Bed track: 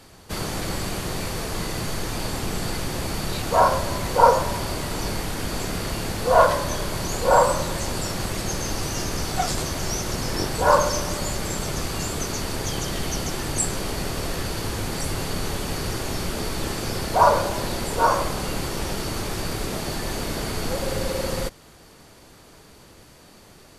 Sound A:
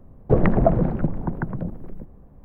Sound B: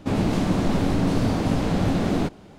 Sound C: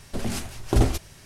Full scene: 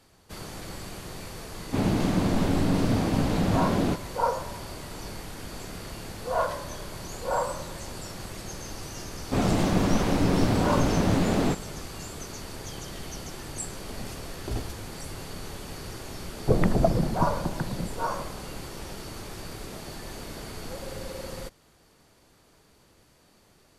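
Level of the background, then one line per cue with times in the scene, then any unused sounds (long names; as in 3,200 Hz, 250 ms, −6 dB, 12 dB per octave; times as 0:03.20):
bed track −11 dB
0:01.67: mix in B −2.5 dB
0:09.26: mix in B + wavefolder on the positive side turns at −20.5 dBFS
0:13.75: mix in C −13 dB
0:16.18: mix in A −4.5 dB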